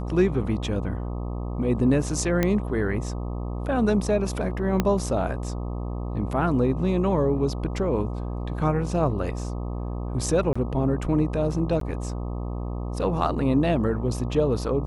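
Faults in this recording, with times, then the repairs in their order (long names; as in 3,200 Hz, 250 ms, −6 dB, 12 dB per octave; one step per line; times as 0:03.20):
mains buzz 60 Hz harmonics 21 −30 dBFS
0:02.43: click −9 dBFS
0:04.80: click −8 dBFS
0:10.53–0:10.55: drop-out 25 ms
0:11.80–0:11.81: drop-out 13 ms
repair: click removal
hum removal 60 Hz, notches 21
repair the gap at 0:10.53, 25 ms
repair the gap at 0:11.80, 13 ms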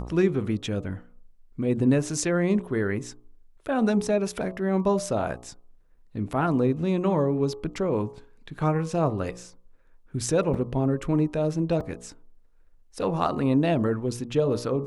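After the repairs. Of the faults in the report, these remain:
0:04.80: click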